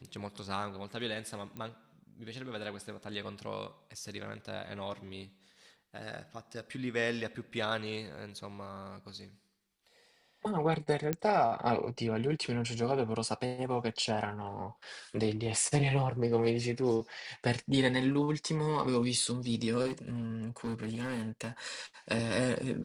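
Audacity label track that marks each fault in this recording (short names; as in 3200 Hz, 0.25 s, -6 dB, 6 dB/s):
1.570000	1.570000	pop -28 dBFS
11.130000	11.130000	pop -16 dBFS
19.860000	21.490000	clipped -31.5 dBFS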